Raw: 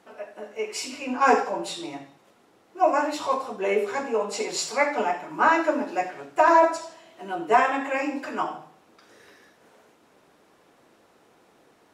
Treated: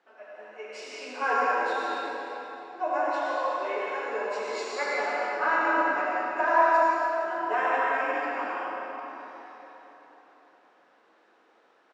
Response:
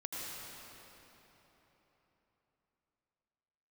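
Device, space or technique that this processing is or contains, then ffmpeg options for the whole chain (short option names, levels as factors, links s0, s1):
station announcement: -filter_complex "[0:a]asettb=1/sr,asplit=3[s0][s1][s2];[s0]atrim=end=3.164[s3];[s1]atrim=start=3.16:end=4.1,asetpts=PTS-STARTPTS,afade=t=in:d=0.004:c=qsin,afade=t=out:st=0.936:d=0.004:c=qsin,highpass=350[s4];[s2]atrim=start=4.096[s5];[s3][s4]acrossfade=d=0.004:c1=hsin:c2=qsin[s6];[s6][s5]acrossfade=d=0.004:c1=qsin:c2=hsin,highpass=400,lowpass=4400,equalizer=f=1600:t=o:w=0.38:g=5.5,aecho=1:1:37.9|125.4:0.355|0.251[s7];[1:a]atrim=start_sample=2205[s8];[s7][s8]afir=irnorm=-1:irlink=0,volume=0.531"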